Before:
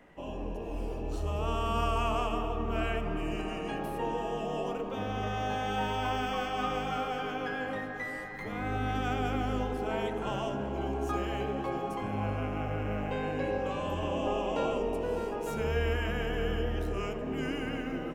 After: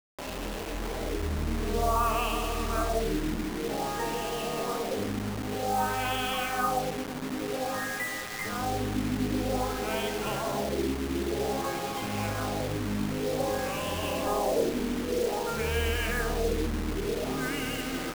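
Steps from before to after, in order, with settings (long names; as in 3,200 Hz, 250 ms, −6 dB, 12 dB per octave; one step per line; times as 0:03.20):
spring reverb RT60 2.8 s, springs 53 ms, chirp 50 ms, DRR 10 dB
auto-filter low-pass sine 0.52 Hz 260–3,300 Hz
bit-depth reduction 6 bits, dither none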